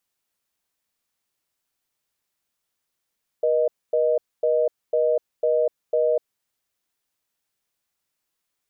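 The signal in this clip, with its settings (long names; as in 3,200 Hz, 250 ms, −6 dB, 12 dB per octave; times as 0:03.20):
call progress tone reorder tone, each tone −20 dBFS 2.86 s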